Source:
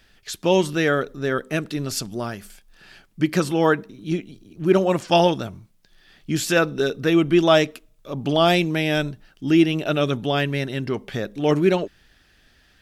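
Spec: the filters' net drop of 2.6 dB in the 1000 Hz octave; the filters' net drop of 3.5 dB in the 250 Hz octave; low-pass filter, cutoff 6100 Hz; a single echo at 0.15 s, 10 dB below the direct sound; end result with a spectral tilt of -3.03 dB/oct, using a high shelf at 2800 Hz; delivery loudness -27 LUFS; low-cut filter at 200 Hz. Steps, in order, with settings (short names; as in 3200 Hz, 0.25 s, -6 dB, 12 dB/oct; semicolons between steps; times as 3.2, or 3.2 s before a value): HPF 200 Hz; LPF 6100 Hz; bell 250 Hz -3.5 dB; bell 1000 Hz -4 dB; high shelf 2800 Hz +3.5 dB; echo 0.15 s -10 dB; gain -4 dB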